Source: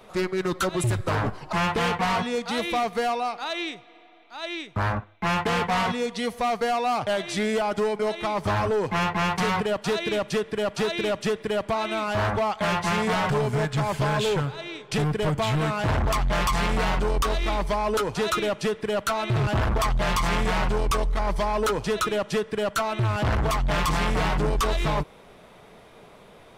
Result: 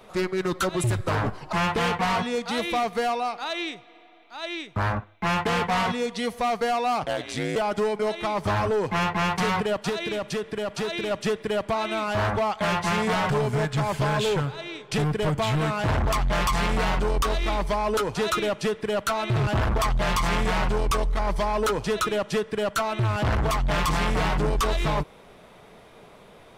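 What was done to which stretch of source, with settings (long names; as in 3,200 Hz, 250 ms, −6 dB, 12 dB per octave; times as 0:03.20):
0:07.03–0:07.56: ring modulation 60 Hz
0:09.89–0:11.11: downward compressor, threshold −25 dBFS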